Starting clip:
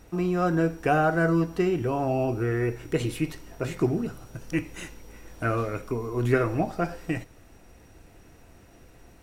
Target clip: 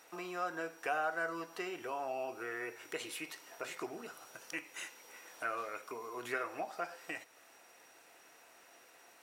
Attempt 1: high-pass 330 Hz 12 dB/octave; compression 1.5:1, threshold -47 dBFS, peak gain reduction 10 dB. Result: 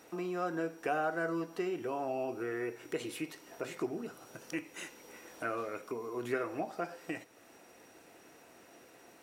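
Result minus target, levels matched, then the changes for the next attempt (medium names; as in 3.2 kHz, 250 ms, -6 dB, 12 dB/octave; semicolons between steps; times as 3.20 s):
250 Hz band +6.5 dB
change: high-pass 760 Hz 12 dB/octave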